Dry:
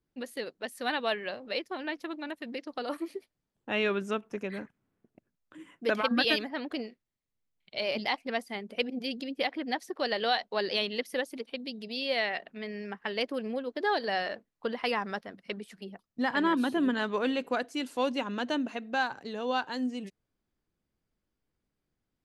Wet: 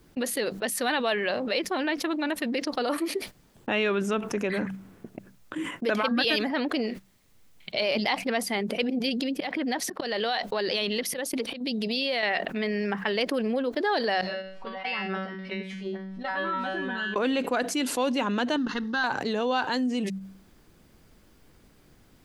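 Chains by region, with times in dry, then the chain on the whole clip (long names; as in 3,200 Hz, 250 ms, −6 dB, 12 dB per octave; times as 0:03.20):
0:09.09–0:12.23: downward compressor 2.5 to 1, threshold −36 dBFS + volume swells 203 ms
0:14.21–0:17.16: low-pass filter 3,700 Hz + upward compression, threshold −33 dBFS + tuned comb filter 190 Hz, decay 0.5 s, mix 100%
0:18.56–0:19.04: mu-law and A-law mismatch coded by A + low-pass filter 8,900 Hz 24 dB per octave + phaser with its sweep stopped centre 2,400 Hz, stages 6
whole clip: hum removal 64.18 Hz, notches 3; noise gate −51 dBFS, range −14 dB; envelope flattener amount 70%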